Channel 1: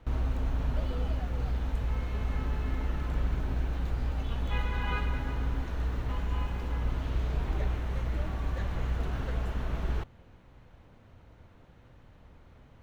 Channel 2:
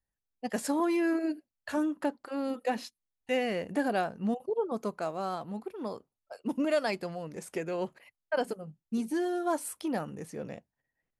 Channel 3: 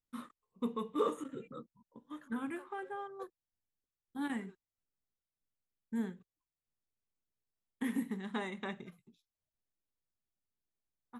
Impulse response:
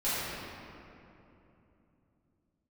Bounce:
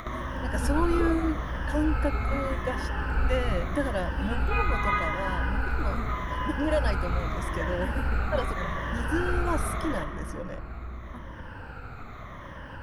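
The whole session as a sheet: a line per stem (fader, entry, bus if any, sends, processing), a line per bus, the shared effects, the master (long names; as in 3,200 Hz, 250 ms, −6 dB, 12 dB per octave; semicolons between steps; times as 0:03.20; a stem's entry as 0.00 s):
−3.5 dB, 0.00 s, send −13 dB, rippled gain that drifts along the octave scale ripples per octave 1.2, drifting −0.82 Hz, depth 15 dB; parametric band 1,400 Hz +12 dB 1.3 octaves
−2.5 dB, 0.00 s, no send, EQ curve with evenly spaced ripples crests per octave 1.2, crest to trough 11 dB
−3.5 dB, 0.00 s, no send, no processing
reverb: on, RT60 3.0 s, pre-delay 4 ms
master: upward compression, threshold −29 dBFS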